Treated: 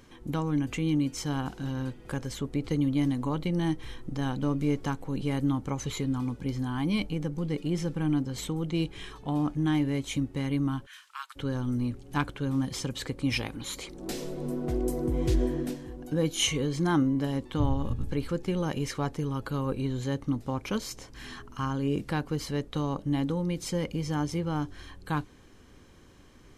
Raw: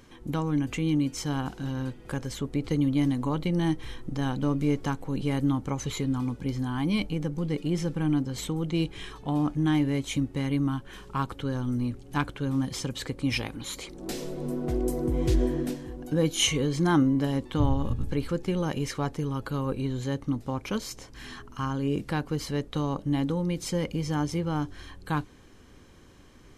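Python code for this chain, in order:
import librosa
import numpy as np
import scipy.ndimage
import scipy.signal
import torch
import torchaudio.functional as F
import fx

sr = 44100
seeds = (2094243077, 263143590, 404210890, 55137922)

p1 = fx.rider(x, sr, range_db=3, speed_s=2.0)
p2 = x + F.gain(torch.from_numpy(p1), 0.5).numpy()
p3 = fx.highpass(p2, sr, hz=1400.0, slope=24, at=(10.85, 11.35), fade=0.02)
y = F.gain(torch.from_numpy(p3), -8.0).numpy()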